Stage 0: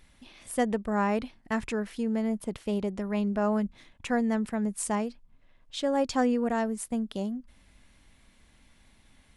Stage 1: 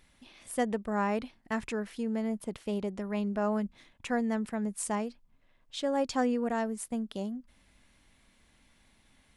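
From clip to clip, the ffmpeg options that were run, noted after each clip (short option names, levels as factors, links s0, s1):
-af "lowshelf=f=120:g=-5,volume=0.75"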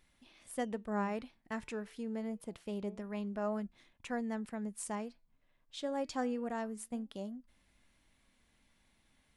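-af "flanger=delay=2.8:depth=4.1:regen=90:speed=0.26:shape=sinusoidal,volume=0.75"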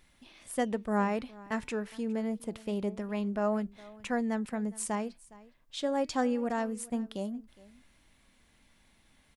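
-af "aecho=1:1:412:0.0891,volume=2.11"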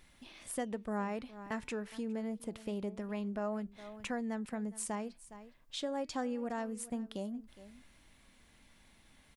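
-af "acompressor=threshold=0.00794:ratio=2,volume=1.19"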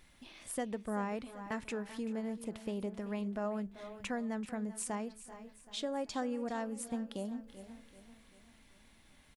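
-af "aecho=1:1:386|772|1158|1544|1930:0.168|0.0856|0.0437|0.0223|0.0114"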